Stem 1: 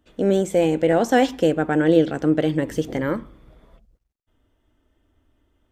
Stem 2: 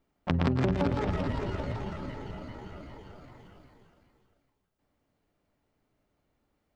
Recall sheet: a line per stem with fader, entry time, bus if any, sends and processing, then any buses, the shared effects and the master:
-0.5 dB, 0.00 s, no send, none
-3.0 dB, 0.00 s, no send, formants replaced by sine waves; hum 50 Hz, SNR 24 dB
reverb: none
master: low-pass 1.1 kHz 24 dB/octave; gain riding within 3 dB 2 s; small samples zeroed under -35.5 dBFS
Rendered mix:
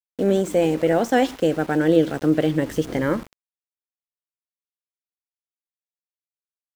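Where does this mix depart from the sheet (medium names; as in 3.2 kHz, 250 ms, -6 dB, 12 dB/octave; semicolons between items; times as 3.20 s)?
stem 2 -3.0 dB -> -13.0 dB; master: missing low-pass 1.1 kHz 24 dB/octave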